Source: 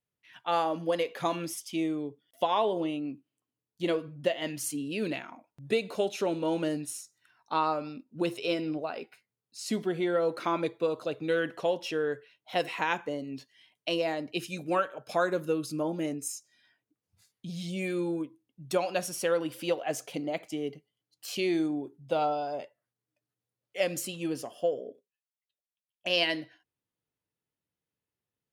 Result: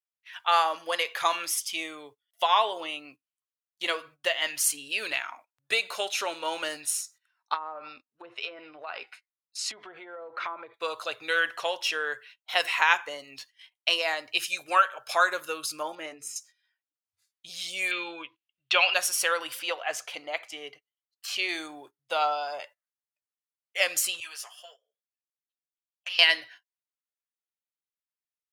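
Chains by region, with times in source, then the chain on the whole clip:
0:07.54–0:10.74: treble cut that deepens with the level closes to 670 Hz, closed at −23.5 dBFS + high-shelf EQ 4,500 Hz −3 dB + downward compressor, threshold −35 dBFS
0:15.95–0:16.36: low-pass filter 1,800 Hz 6 dB per octave + hum removal 148.1 Hz, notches 3
0:17.91–0:18.94: low-pass filter 4,600 Hz 24 dB per octave + parametric band 2,800 Hz +14.5 dB 0.8 octaves
0:19.59–0:21.49: low-pass filter 3,100 Hz 6 dB per octave + parametric band 160 Hz −3.5 dB 1.8 octaves
0:24.20–0:26.19: high-pass filter 1,100 Hz + downward compressor 4 to 1, threshold −38 dBFS + string-ensemble chorus
whole clip: drawn EQ curve 110 Hz 0 dB, 170 Hz −22 dB, 1,200 Hz +10 dB; noise gate −49 dBFS, range −19 dB; low-shelf EQ 220 Hz −8 dB

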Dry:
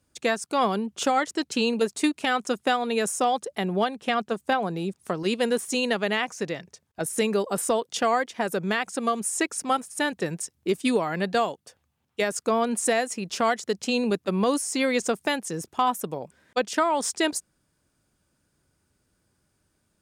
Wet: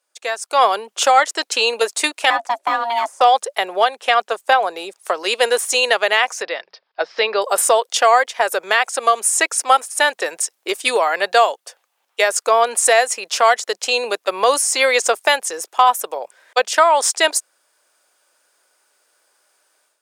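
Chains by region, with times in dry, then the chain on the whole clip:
0:02.30–0:03.21: ring modulation 470 Hz + de-essing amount 90% + spectral tilt −2.5 dB per octave
0:06.42–0:07.42: Chebyshev low-pass filter 5,100 Hz, order 6 + mains-hum notches 60/120/180/240 Hz
whole clip: high-pass filter 530 Hz 24 dB per octave; automatic gain control gain up to 12 dB; level +1 dB

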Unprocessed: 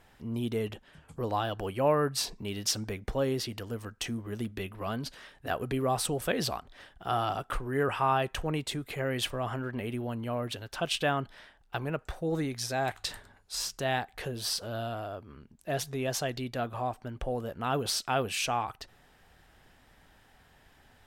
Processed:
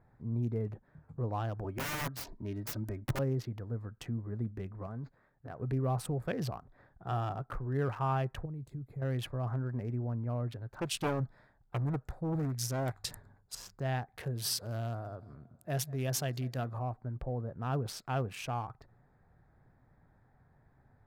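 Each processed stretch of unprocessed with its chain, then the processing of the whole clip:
0:01.64–0:03.19: high-shelf EQ 5,600 Hz −4 dB + comb filter 3.2 ms, depth 85% + wrap-around overflow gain 23.5 dB
0:04.86–0:05.59: mu-law and A-law mismatch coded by A + downward compressor 2 to 1, threshold −37 dBFS + linearly interpolated sample-rate reduction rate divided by 4×
0:08.45–0:09.02: drawn EQ curve 110 Hz 0 dB, 1,700 Hz −14 dB, 13,000 Hz +4 dB + downward compressor 10 to 1, threshold −36 dBFS
0:10.80–0:13.55: bass and treble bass +2 dB, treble +13 dB + highs frequency-modulated by the lows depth 0.81 ms
0:14.13–0:16.79: high-pass filter 56 Hz + high-shelf EQ 2,700 Hz +12 dB + repeating echo 192 ms, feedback 54%, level −21 dB
whole clip: adaptive Wiener filter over 15 samples; octave-band graphic EQ 125/4,000/8,000 Hz +11/−5/−4 dB; level −6.5 dB

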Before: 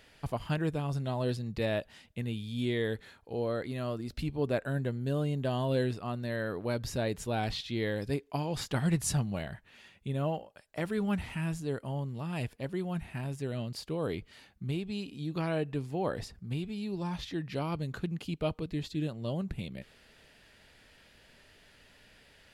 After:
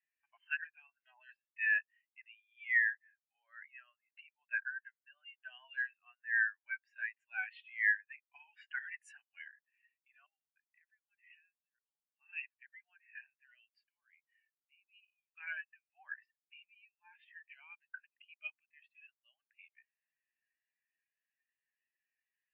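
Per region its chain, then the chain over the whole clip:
0:10.26–0:12.12: high-shelf EQ 4,000 Hz +9 dB + downward compressor 5 to 1, threshold −45 dBFS
0:13.85–0:15.35: high-shelf EQ 5,400 Hz −3 dB + downward compressor 1.5 to 1, threshold −46 dBFS
whole clip: Butterworth high-pass 790 Hz 36 dB per octave; flat-topped bell 2,100 Hz +15.5 dB 1.2 octaves; every bin expanded away from the loudest bin 2.5 to 1; level −5.5 dB

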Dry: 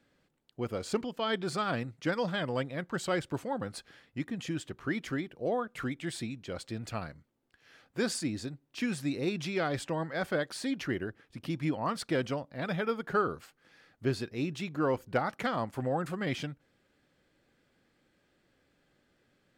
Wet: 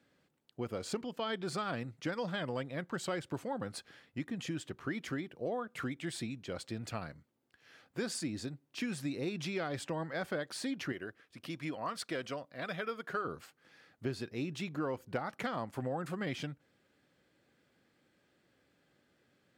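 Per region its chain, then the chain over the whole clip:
0:10.92–0:13.25: Butterworth band-reject 860 Hz, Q 7.2 + low-shelf EQ 350 Hz −10.5 dB
whole clip: high-pass filter 78 Hz; downward compressor 3 to 1, threshold −33 dBFS; level −1 dB

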